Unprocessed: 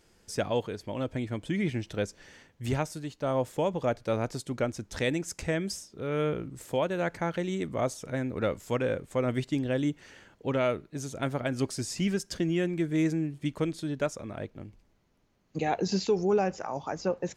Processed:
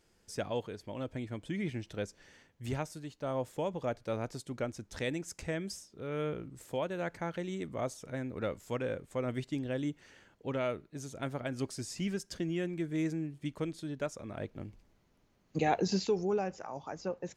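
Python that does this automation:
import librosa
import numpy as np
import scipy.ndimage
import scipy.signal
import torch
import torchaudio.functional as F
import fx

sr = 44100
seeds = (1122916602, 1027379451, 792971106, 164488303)

y = fx.gain(x, sr, db=fx.line((14.08, -6.5), (14.6, 0.0), (15.67, 0.0), (16.45, -7.5)))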